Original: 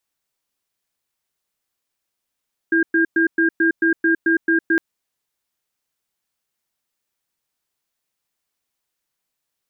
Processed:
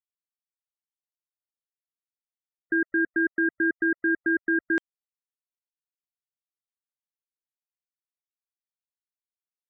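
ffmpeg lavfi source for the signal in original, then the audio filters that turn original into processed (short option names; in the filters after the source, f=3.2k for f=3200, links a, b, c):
-f lavfi -i "aevalsrc='0.158*(sin(2*PI*330*t)+sin(2*PI*1610*t))*clip(min(mod(t,0.22),0.11-mod(t,0.22))/0.005,0,1)':d=2.06:s=44100"
-af "afftfilt=real='re*gte(hypot(re,im),0.00631)':imag='im*gte(hypot(re,im),0.00631)':win_size=1024:overlap=0.75,alimiter=limit=-16.5dB:level=0:latency=1:release=74"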